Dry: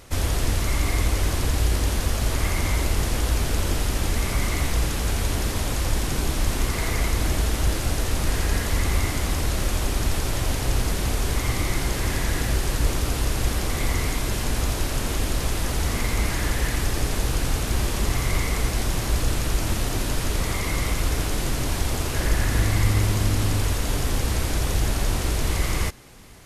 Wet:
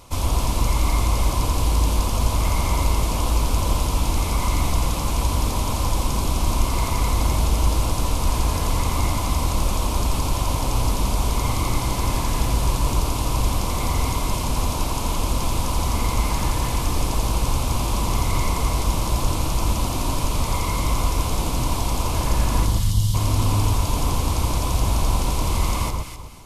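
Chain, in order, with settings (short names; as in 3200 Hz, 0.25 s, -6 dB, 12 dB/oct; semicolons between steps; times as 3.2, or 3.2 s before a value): notch 1900 Hz, Q 6.6; spectral gain 22.66–23.15, 230–2800 Hz -20 dB; thirty-one-band EQ 400 Hz -5 dB, 1000 Hz +11 dB, 1600 Hz -11 dB; on a send: echo with dull and thin repeats by turns 0.128 s, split 1200 Hz, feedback 51%, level -2 dB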